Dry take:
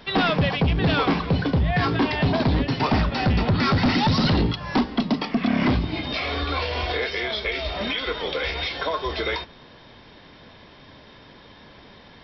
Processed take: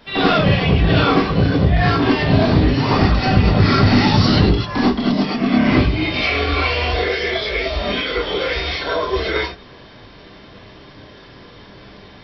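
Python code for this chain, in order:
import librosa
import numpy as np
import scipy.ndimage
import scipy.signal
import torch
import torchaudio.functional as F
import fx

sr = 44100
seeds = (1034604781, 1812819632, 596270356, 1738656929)

y = fx.dynamic_eq(x, sr, hz=2400.0, q=2.3, threshold_db=-44.0, ratio=4.0, max_db=7, at=(5.67, 6.8))
y = fx.rev_gated(y, sr, seeds[0], gate_ms=120, shape='rising', drr_db=-8.0)
y = F.gain(torch.from_numpy(y), -3.0).numpy()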